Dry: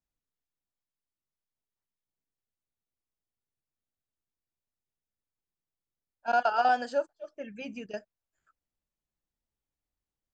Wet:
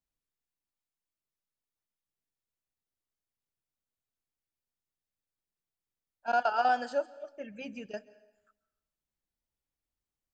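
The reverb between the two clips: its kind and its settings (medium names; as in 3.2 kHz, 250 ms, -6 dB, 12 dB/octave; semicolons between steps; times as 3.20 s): plate-style reverb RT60 0.9 s, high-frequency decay 0.9×, pre-delay 120 ms, DRR 18.5 dB; trim -2 dB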